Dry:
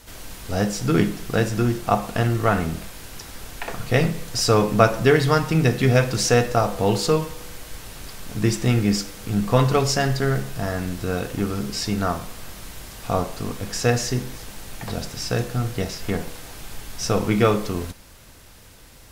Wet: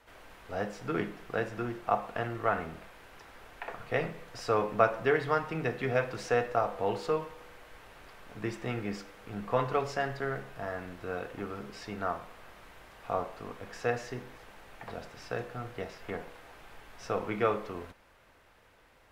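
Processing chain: three-band isolator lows -12 dB, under 390 Hz, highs -18 dB, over 2700 Hz; gain -7 dB

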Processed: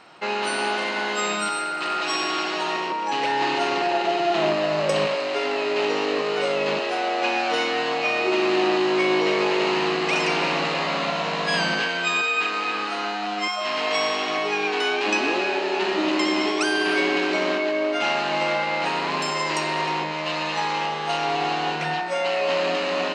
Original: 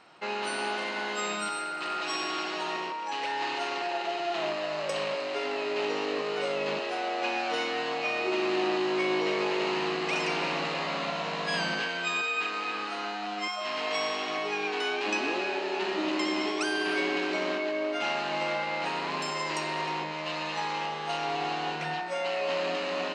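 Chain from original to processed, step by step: 2.9–5.07 low shelf 350 Hz +10.5 dB; gain +7 dB

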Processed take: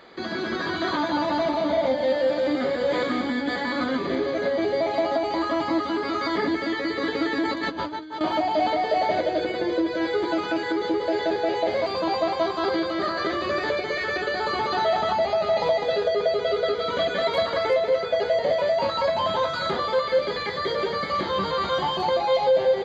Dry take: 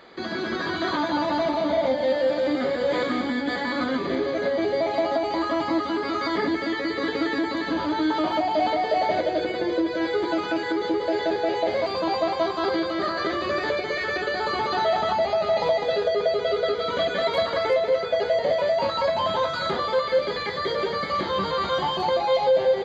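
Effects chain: 7.45–8.21 negative-ratio compressor -29 dBFS, ratio -0.5

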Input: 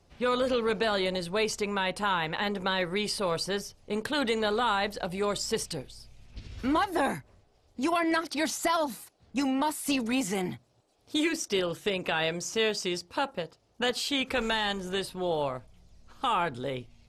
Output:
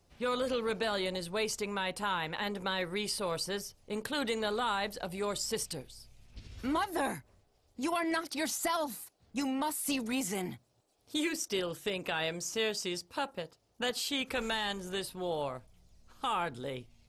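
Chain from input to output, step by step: high shelf 9600 Hz +12 dB; gain -5.5 dB

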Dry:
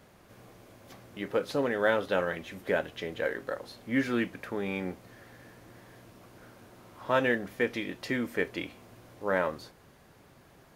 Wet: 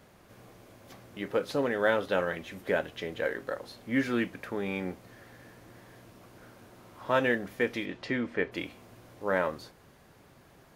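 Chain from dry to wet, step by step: 7.85–8.51 LPF 5600 Hz -> 3100 Hz 12 dB/oct

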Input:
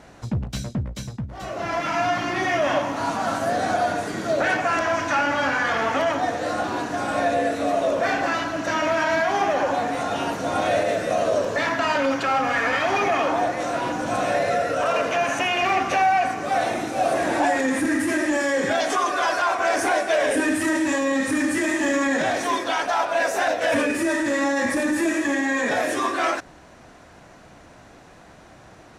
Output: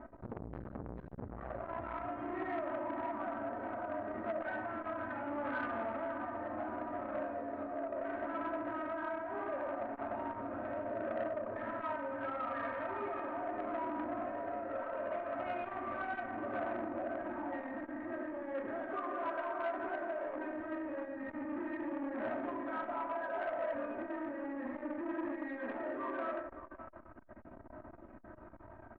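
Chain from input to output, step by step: LPF 1500 Hz 24 dB/oct; comb 3.2 ms, depth 99%; limiter -13 dBFS, peak gain reduction 6.5 dB; compressor 8:1, threshold -29 dBFS, peak gain reduction 12.5 dB; phaser 0.18 Hz, delay 3.2 ms, feedback 31%; echo 0.57 s -10.5 dB; on a send at -3 dB: reverb RT60 1.1 s, pre-delay 4 ms; on the sum: core saturation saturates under 820 Hz; gain -8.5 dB

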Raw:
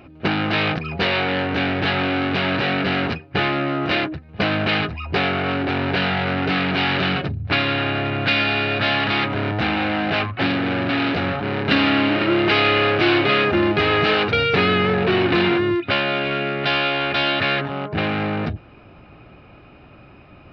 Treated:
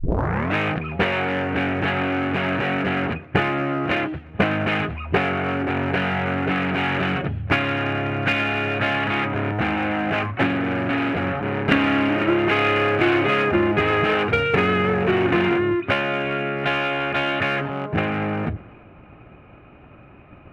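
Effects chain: tape start at the beginning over 0.56 s; LPF 2600 Hz 24 dB/oct; transient shaper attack +7 dB, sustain +3 dB; in parallel at -4.5 dB: one-sided clip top -17.5 dBFS; on the sum: warbling echo 0.118 s, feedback 53%, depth 203 cents, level -23 dB; gain -5.5 dB

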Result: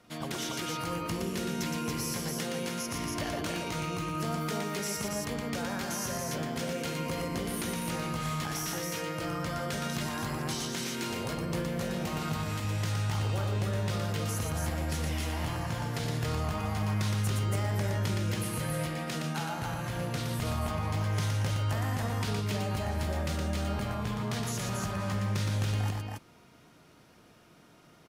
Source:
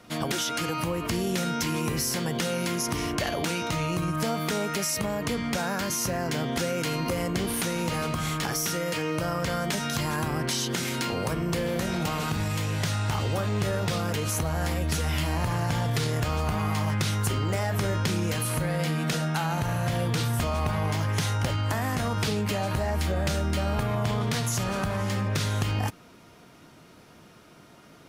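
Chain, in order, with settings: loudspeakers at several distances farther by 40 m -4 dB, 96 m -3 dB; gain -8.5 dB

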